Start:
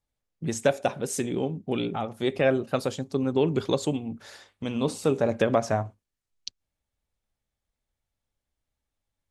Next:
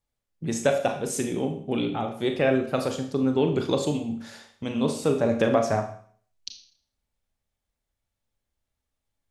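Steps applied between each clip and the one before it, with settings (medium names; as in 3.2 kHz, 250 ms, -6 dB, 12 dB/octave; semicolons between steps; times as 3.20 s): Schroeder reverb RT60 0.52 s, combs from 27 ms, DRR 5 dB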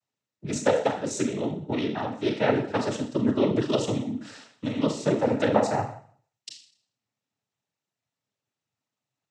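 noise-vocoded speech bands 12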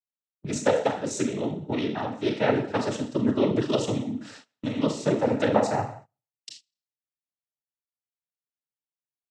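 gate -45 dBFS, range -23 dB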